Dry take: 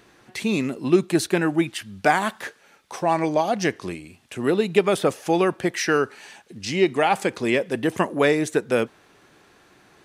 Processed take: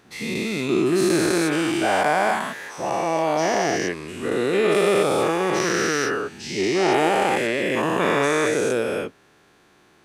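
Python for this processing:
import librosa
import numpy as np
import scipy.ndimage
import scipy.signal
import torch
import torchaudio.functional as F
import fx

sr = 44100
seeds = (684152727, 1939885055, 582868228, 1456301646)

y = fx.spec_dilate(x, sr, span_ms=480)
y = y * librosa.db_to_amplitude(-8.0)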